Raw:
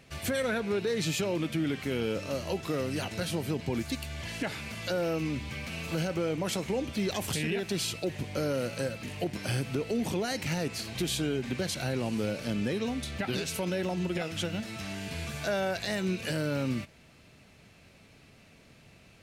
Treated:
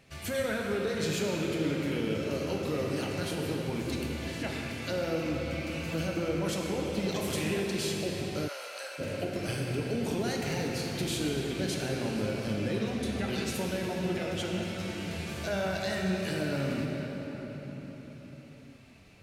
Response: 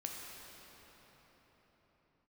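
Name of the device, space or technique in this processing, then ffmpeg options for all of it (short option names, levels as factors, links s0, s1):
cathedral: -filter_complex "[1:a]atrim=start_sample=2205[s0];[0:a][s0]afir=irnorm=-1:irlink=0,asplit=3[s1][s2][s3];[s1]afade=t=out:st=8.47:d=0.02[s4];[s2]highpass=f=730:w=0.5412,highpass=f=730:w=1.3066,afade=t=in:st=8.47:d=0.02,afade=t=out:st=8.98:d=0.02[s5];[s3]afade=t=in:st=8.98:d=0.02[s6];[s4][s5][s6]amix=inputs=3:normalize=0"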